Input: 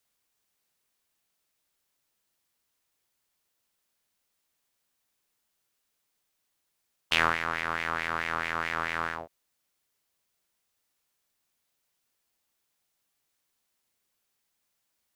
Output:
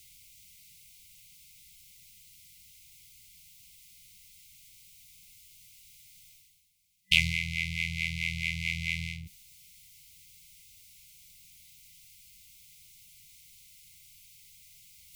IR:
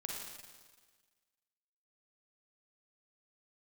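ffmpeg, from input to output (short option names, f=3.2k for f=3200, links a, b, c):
-af "lowshelf=f=130:g=8,acontrast=41,afftfilt=real='re*(1-between(b*sr/4096,190,2000))':imag='im*(1-between(b*sr/4096,190,2000))':win_size=4096:overlap=0.75,areverse,acompressor=mode=upward:threshold=-40dB:ratio=2.5,areverse"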